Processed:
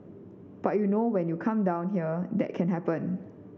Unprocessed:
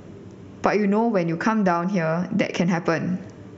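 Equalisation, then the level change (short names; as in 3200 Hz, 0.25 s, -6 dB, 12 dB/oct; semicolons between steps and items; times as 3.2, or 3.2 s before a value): band-pass 310 Hz, Q 0.59; -4.5 dB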